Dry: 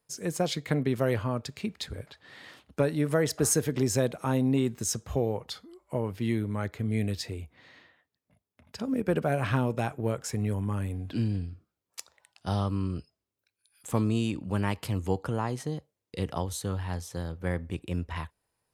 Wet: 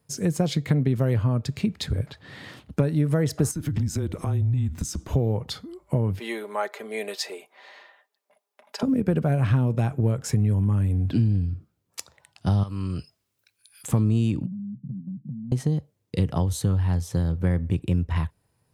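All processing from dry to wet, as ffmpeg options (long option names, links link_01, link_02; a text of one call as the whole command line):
ffmpeg -i in.wav -filter_complex "[0:a]asettb=1/sr,asplit=3[link_01][link_02][link_03];[link_01]atrim=end=3.514[link_04];[link_02]atrim=start=3.51:end=5.13,asetpts=PTS-STARTPTS,afade=type=in:duration=0.004:curve=qsin,afade=type=out:start_time=1.616:duration=0.004:curve=qsin,lowshelf=frequency=150:width_type=q:width=1.5:gain=-14,acompressor=threshold=-35dB:ratio=6:attack=3.2:release=140:knee=1:detection=peak,afreqshift=-150[link_05];[link_03]atrim=start=5.126[link_06];[link_04][link_05]acrossfade=duration=0.004:curve1=hsin:curve2=qsin[link_07];[link_07][link_06]acrossfade=duration=0.004:curve1=qsin:curve2=hsin,asettb=1/sr,asplit=3[link_08][link_09][link_10];[link_08]atrim=end=6.194[link_11];[link_09]atrim=start=6.19:end=8.83,asetpts=PTS-STARTPTS,afade=type=in:duration=0.004:curve=qsin,afade=type=out:start_time=2.636:duration=0.004:curve=qsin,highpass=frequency=480:width=0.5412,highpass=frequency=480:width=1.3066,equalizer=frequency=850:width=1.6:gain=5.5,aecho=1:1:5:0.54,atrim=end_sample=116424[link_12];[link_10]atrim=start=8.826[link_13];[link_11][link_12]acrossfade=duration=0.004:curve1=hsin:curve2=qsin[link_14];[link_14][link_13]acrossfade=duration=0.004:curve1=qsin:curve2=hsin,asettb=1/sr,asplit=3[link_15][link_16][link_17];[link_15]atrim=end=12.634[link_18];[link_16]atrim=start=12.63:end=13.88,asetpts=PTS-STARTPTS,afade=type=in:duration=0.004:curve=qsin,afade=type=out:start_time=1.246:duration=0.004:curve=qsin,tiltshelf=frequency=640:gain=-7.5,acompressor=threshold=-40dB:ratio=2.5:attack=3.2:release=140:knee=1:detection=peak[link_19];[link_17]atrim=start=13.876[link_20];[link_18][link_19]acrossfade=duration=0.004:curve1=hsin:curve2=qsin[link_21];[link_21][link_20]acrossfade=duration=0.004:curve1=qsin:curve2=hsin,asettb=1/sr,asplit=3[link_22][link_23][link_24];[link_22]atrim=end=14.464[link_25];[link_23]atrim=start=14.46:end=15.52,asetpts=PTS-STARTPTS,afade=type=in:duration=0.004:curve=qsin,afade=type=out:start_time=1.056:duration=0.004:curve=qsin,asuperpass=centerf=180:order=12:qfactor=1.4,acompressor=threshold=-46dB:ratio=12:attack=3.2:release=140:knee=1:detection=peak[link_26];[link_24]atrim=start=15.516[link_27];[link_25][link_26]acrossfade=duration=0.004:curve1=hsin:curve2=qsin[link_28];[link_28][link_27]acrossfade=duration=0.004:curve1=qsin:curve2=hsin,equalizer=frequency=120:width_type=o:width=2.4:gain=13,acompressor=threshold=-26dB:ratio=3,volume=5dB" out.wav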